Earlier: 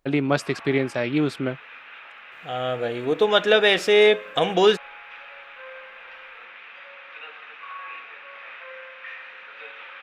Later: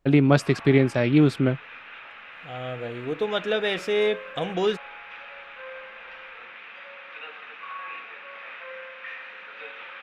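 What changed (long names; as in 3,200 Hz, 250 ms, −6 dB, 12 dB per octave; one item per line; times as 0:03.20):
second voice −9.5 dB
master: add low-shelf EQ 220 Hz +12 dB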